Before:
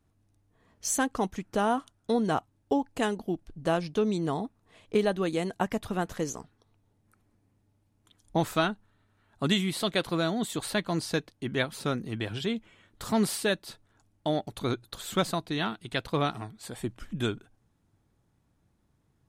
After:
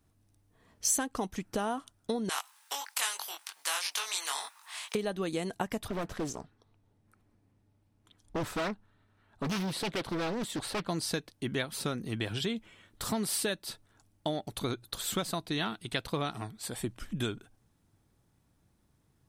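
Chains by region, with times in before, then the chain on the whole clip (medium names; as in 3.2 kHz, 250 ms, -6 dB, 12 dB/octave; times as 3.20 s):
2.29–4.95 s: Chebyshev high-pass 940 Hz, order 4 + doubling 21 ms -2.5 dB + spectrum-flattening compressor 2:1
5.88–10.89 s: hard clipper -28 dBFS + treble shelf 5 kHz -10.5 dB + loudspeaker Doppler distortion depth 0.73 ms
whole clip: compression, threshold -29 dBFS; treble shelf 3.8 kHz +6.5 dB; band-stop 6.8 kHz, Q 18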